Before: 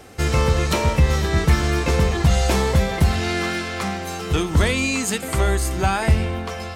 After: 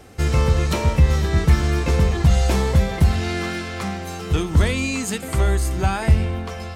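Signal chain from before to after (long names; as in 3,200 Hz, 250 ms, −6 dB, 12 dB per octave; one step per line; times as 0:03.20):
low-shelf EQ 230 Hz +6 dB
level −3.5 dB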